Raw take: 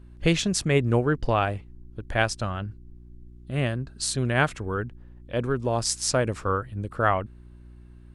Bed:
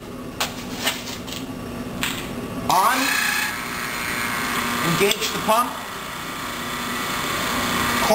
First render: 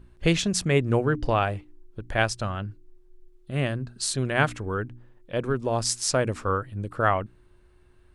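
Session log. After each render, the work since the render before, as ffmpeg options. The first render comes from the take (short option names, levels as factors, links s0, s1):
-af "bandreject=f=60:t=h:w=4,bandreject=f=120:t=h:w=4,bandreject=f=180:t=h:w=4,bandreject=f=240:t=h:w=4,bandreject=f=300:t=h:w=4"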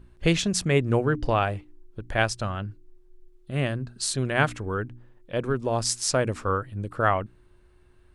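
-af anull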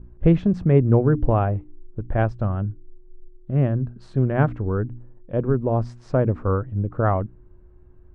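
-af "lowpass=1100,lowshelf=f=400:g=9"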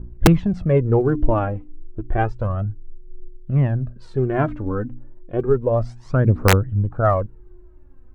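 -af "aphaser=in_gain=1:out_gain=1:delay=4:decay=0.61:speed=0.31:type=triangular,aeval=exprs='(mod(1.58*val(0)+1,2)-1)/1.58':c=same"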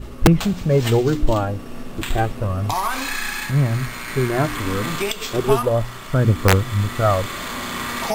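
-filter_complex "[1:a]volume=0.531[s0];[0:a][s0]amix=inputs=2:normalize=0"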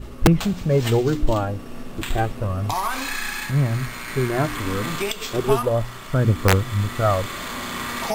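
-af "volume=0.794"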